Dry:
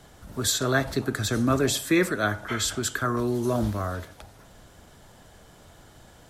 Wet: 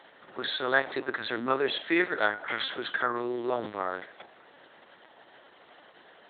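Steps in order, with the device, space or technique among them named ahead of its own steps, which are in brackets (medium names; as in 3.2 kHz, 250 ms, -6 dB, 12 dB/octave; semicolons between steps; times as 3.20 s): talking toy (LPC vocoder at 8 kHz pitch kept; high-pass 420 Hz 12 dB/octave; peaking EQ 1.9 kHz +5 dB 0.29 oct)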